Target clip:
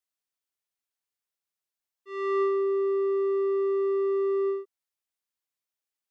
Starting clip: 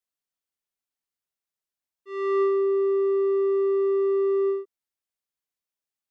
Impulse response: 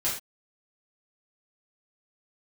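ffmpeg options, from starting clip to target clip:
-af "lowshelf=frequency=430:gain=-6"

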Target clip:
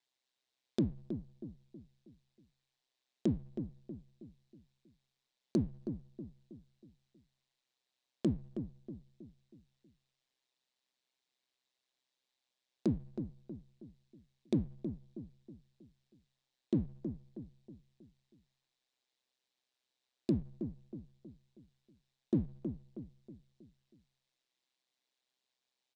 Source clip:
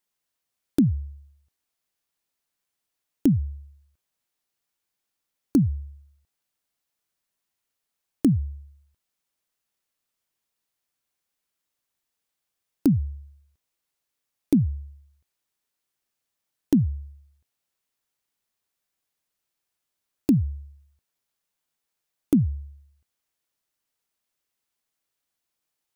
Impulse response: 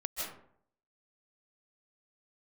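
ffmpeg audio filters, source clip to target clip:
-filter_complex "[0:a]aeval=exprs='if(lt(val(0),0),0.708*val(0),val(0))':channel_layout=same,alimiter=limit=-18.5dB:level=0:latency=1:release=189,highpass=220,equalizer=frequency=1300:width_type=q:width=4:gain=-7,equalizer=frequency=3800:width_type=q:width=4:gain=7,equalizer=frequency=6400:width_type=q:width=4:gain=-3,lowpass=frequency=7200:width=0.5412,lowpass=frequency=7200:width=1.3066,asplit=2[link_01][link_02];[link_02]adelay=319,lowpass=frequency=1000:poles=1,volume=-8dB,asplit=2[link_03][link_04];[link_04]adelay=319,lowpass=frequency=1000:poles=1,volume=0.46,asplit=2[link_05][link_06];[link_06]adelay=319,lowpass=frequency=1000:poles=1,volume=0.46,asplit=2[link_07][link_08];[link_08]adelay=319,lowpass=frequency=1000:poles=1,volume=0.46,asplit=2[link_09][link_10];[link_10]adelay=319,lowpass=frequency=1000:poles=1,volume=0.46[link_11];[link_03][link_05][link_07][link_09][link_11]amix=inputs=5:normalize=0[link_12];[link_01][link_12]amix=inputs=2:normalize=0,aeval=exprs='val(0)*sin(2*PI*64*n/s)':channel_layout=same,volume=2.5dB"

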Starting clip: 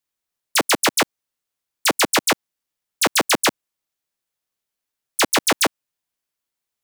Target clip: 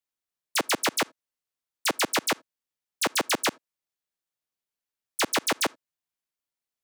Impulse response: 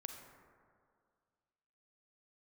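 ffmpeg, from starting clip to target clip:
-filter_complex "[0:a]asplit=2[link_01][link_02];[link_02]highpass=100[link_03];[1:a]atrim=start_sample=2205,atrim=end_sample=3969,lowpass=8300[link_04];[link_03][link_04]afir=irnorm=-1:irlink=0,volume=-13dB[link_05];[link_01][link_05]amix=inputs=2:normalize=0,volume=-8.5dB"

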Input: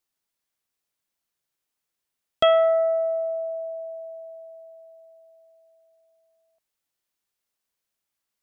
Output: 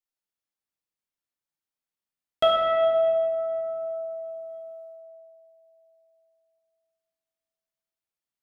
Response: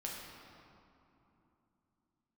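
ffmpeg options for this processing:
-filter_complex "[0:a]agate=range=-9dB:threshold=-49dB:ratio=16:detection=peak[link_01];[1:a]atrim=start_sample=2205[link_02];[link_01][link_02]afir=irnorm=-1:irlink=0"

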